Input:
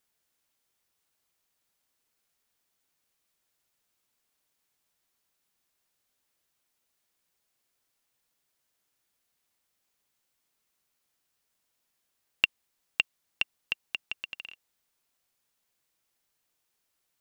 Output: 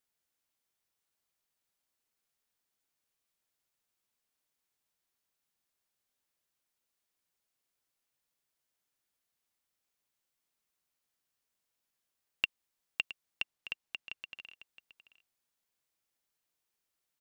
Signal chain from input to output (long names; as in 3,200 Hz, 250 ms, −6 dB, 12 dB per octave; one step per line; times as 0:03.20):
0:13.42–0:14.46: high-shelf EQ 7,700 Hz −5.5 dB
single-tap delay 668 ms −15 dB
level −7 dB